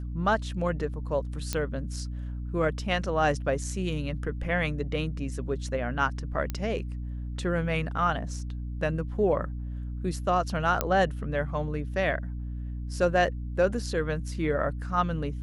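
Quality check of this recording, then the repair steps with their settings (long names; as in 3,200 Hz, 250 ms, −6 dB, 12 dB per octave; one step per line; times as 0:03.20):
mains hum 60 Hz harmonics 5 −34 dBFS
0:01.53: click −13 dBFS
0:06.50: click −17 dBFS
0:10.81: click −9 dBFS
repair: click removal
hum removal 60 Hz, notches 5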